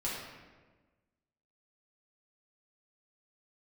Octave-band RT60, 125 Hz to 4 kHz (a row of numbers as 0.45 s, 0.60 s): 1.6 s, 1.6 s, 1.5 s, 1.2 s, 1.2 s, 0.90 s